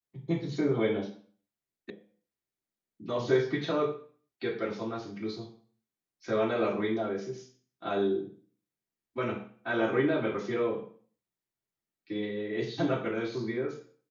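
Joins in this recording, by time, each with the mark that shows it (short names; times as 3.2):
1.9 sound cut off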